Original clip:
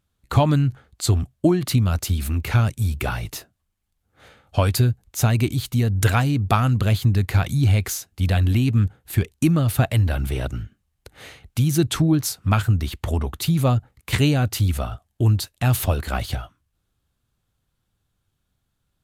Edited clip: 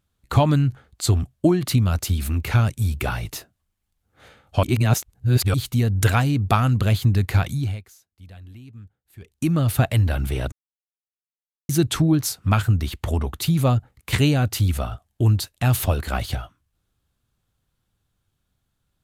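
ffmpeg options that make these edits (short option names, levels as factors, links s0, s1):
-filter_complex "[0:a]asplit=7[s0][s1][s2][s3][s4][s5][s6];[s0]atrim=end=4.632[s7];[s1]atrim=start=4.628:end=5.542,asetpts=PTS-STARTPTS,areverse[s8];[s2]atrim=start=5.538:end=7.83,asetpts=PTS-STARTPTS,afade=t=out:st=1.852:d=0.44:silence=0.0668344[s9];[s3]atrim=start=7.83:end=9.19,asetpts=PTS-STARTPTS,volume=0.0668[s10];[s4]atrim=start=9.19:end=10.52,asetpts=PTS-STARTPTS,afade=t=in:d=0.44:silence=0.0668344,afade=t=out:st=1.326:d=0.004:c=hsin[s11];[s5]atrim=start=10.52:end=11.69,asetpts=PTS-STARTPTS,volume=0[s12];[s6]atrim=start=11.69,asetpts=PTS-STARTPTS,afade=t=in:d=0.004:c=hsin[s13];[s7][s8]acrossfade=d=0.004:c1=hsin:c2=hsin[s14];[s9][s10][s11][s12][s13]concat=n=5:v=0:a=1[s15];[s14][s15]acrossfade=d=0.004:c1=hsin:c2=hsin"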